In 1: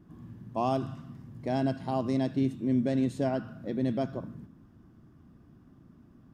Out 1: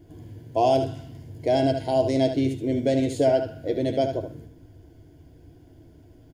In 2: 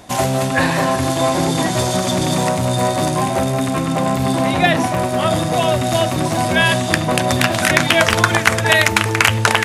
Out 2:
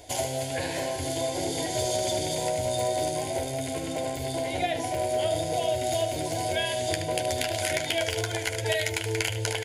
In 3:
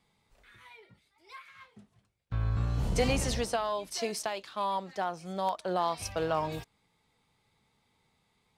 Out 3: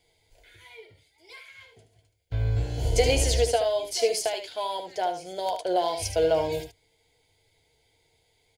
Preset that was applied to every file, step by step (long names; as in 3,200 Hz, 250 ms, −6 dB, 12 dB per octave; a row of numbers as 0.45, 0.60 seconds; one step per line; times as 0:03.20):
EQ curve with evenly spaced ripples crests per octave 1.8, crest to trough 6 dB
downward compressor 3 to 1, threshold −20 dBFS
phaser with its sweep stopped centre 490 Hz, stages 4
ambience of single reflections 11 ms −8.5 dB, 75 ms −8.5 dB
normalise the peak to −9 dBFS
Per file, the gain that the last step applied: +10.5, −4.5, +7.0 decibels